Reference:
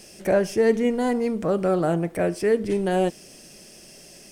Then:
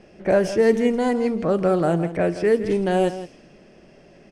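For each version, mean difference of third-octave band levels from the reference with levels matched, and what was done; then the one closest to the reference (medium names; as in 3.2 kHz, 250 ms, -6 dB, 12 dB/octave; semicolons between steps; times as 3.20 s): 3.5 dB: level-controlled noise filter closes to 1.6 kHz, open at -15.5 dBFS; on a send: delay 165 ms -13 dB; on the sum: trim +2 dB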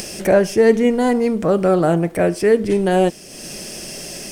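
2.5 dB: crackle 150 per s -50 dBFS; upward compressor, threshold -28 dBFS; trim +6.5 dB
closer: second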